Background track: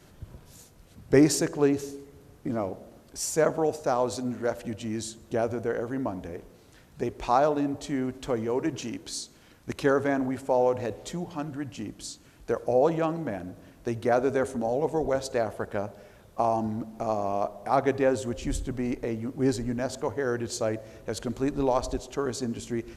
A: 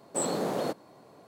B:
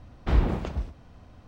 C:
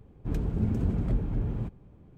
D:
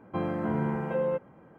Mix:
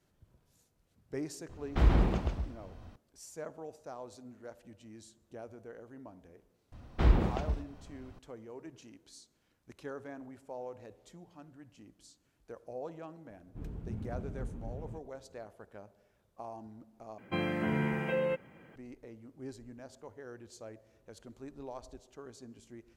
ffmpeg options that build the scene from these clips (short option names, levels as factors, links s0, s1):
-filter_complex "[2:a]asplit=2[s0][s1];[0:a]volume=0.106[s2];[s0]aecho=1:1:133:0.668[s3];[4:a]highshelf=f=1600:t=q:w=1.5:g=11[s4];[s2]asplit=2[s5][s6];[s5]atrim=end=17.184[s7];[s4]atrim=end=1.58,asetpts=PTS-STARTPTS,volume=0.75[s8];[s6]atrim=start=18.756[s9];[s3]atrim=end=1.47,asetpts=PTS-STARTPTS,volume=0.708,afade=t=in:d=0.004:c=hsin,afade=t=out:st=1.466:d=0.004:c=hsin,adelay=1490[s10];[s1]atrim=end=1.47,asetpts=PTS-STARTPTS,volume=0.75,afade=t=in:d=0.004:c=hsin,afade=t=out:st=1.466:d=0.004:c=hsin,adelay=6720[s11];[3:a]atrim=end=2.17,asetpts=PTS-STARTPTS,volume=0.224,afade=t=in:d=0.004:c=hsin,afade=t=out:st=2.166:d=0.004:c=hsin,adelay=13300[s12];[s7][s8]acrossfade=d=0.004:c1=hsin:c2=hsin[s13];[s13][s9]acrossfade=d=0.004:c1=hsin:c2=hsin[s14];[s14][s10][s11][s12]amix=inputs=4:normalize=0"